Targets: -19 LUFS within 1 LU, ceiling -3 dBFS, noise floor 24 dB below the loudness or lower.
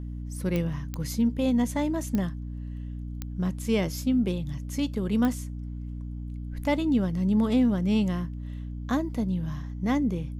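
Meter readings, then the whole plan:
clicks 5; hum 60 Hz; harmonics up to 300 Hz; hum level -33 dBFS; loudness -28.0 LUFS; peak -12.5 dBFS; loudness target -19.0 LUFS
-> de-click; de-hum 60 Hz, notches 5; gain +9 dB

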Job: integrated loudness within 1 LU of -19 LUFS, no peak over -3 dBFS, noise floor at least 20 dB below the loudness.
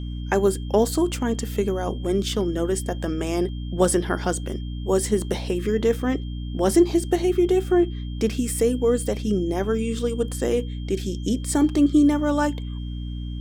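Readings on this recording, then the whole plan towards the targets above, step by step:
hum 60 Hz; harmonics up to 300 Hz; hum level -28 dBFS; steady tone 3200 Hz; tone level -47 dBFS; loudness -23.5 LUFS; peak -6.0 dBFS; loudness target -19.0 LUFS
-> notches 60/120/180/240/300 Hz; notch 3200 Hz, Q 30; gain +4.5 dB; limiter -3 dBFS

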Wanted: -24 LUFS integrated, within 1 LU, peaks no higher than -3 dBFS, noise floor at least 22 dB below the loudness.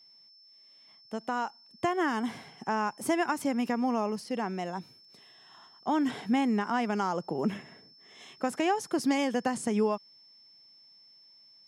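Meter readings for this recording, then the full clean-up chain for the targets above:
steady tone 5300 Hz; tone level -55 dBFS; loudness -30.5 LUFS; peak -15.5 dBFS; loudness target -24.0 LUFS
-> notch 5300 Hz, Q 30; gain +6.5 dB

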